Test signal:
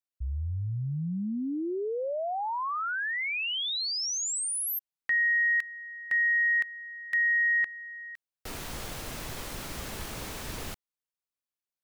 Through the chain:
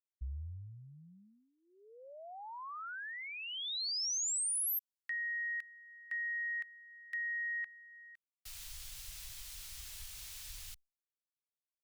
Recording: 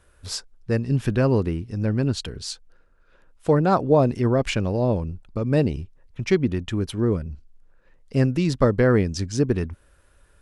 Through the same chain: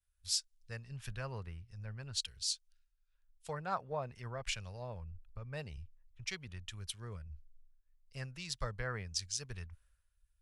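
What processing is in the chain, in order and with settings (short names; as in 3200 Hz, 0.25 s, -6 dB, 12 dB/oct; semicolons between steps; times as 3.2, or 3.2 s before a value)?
passive tone stack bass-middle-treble 10-0-10; compressor 2:1, threshold -47 dBFS; three-band expander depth 100%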